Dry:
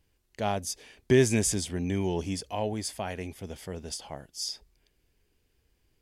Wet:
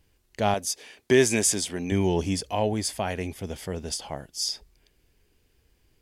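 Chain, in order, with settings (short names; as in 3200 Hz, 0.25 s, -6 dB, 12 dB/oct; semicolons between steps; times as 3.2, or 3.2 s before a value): 0.54–1.92 HPF 380 Hz 6 dB/oct; gain +5.5 dB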